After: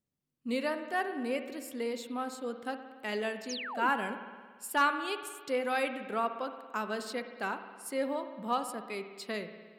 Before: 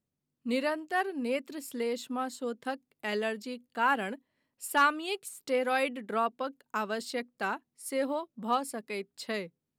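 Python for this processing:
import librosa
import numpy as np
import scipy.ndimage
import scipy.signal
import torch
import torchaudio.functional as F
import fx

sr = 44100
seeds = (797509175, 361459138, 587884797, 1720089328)

y = fx.rev_spring(x, sr, rt60_s=1.6, pass_ms=(56,), chirp_ms=40, drr_db=8.5)
y = fx.spec_paint(y, sr, seeds[0], shape='fall', start_s=3.49, length_s=0.41, low_hz=210.0, high_hz=7100.0, level_db=-37.0)
y = y * 10.0 ** (-2.5 / 20.0)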